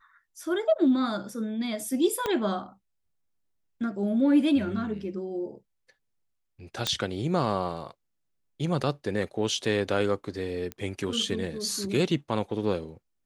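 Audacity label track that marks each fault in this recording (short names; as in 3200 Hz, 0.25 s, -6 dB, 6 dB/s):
2.260000	2.260000	pop -14 dBFS
6.870000	6.870000	pop -11 dBFS
10.720000	10.720000	pop -20 dBFS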